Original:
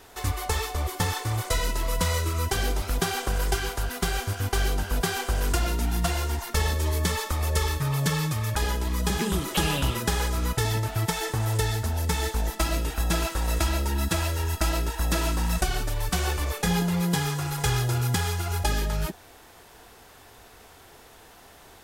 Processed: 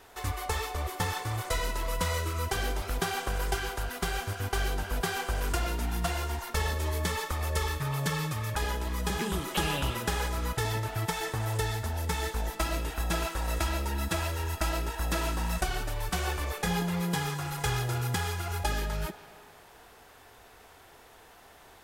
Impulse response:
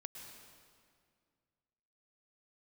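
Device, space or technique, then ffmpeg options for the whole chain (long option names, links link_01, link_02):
filtered reverb send: -filter_complex "[0:a]asplit=2[link_01][link_02];[link_02]highpass=360,lowpass=3600[link_03];[1:a]atrim=start_sample=2205[link_04];[link_03][link_04]afir=irnorm=-1:irlink=0,volume=-1.5dB[link_05];[link_01][link_05]amix=inputs=2:normalize=0,volume=-5.5dB"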